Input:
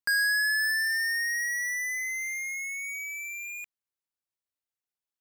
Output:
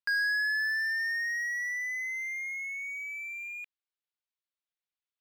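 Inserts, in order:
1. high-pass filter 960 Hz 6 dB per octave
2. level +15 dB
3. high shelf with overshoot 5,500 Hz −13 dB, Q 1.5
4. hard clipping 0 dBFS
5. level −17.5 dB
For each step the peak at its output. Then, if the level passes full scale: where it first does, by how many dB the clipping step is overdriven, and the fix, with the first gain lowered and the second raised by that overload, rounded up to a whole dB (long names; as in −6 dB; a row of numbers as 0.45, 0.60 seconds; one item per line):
−20.0, −5.0, −5.0, −5.0, −22.5 dBFS
no step passes full scale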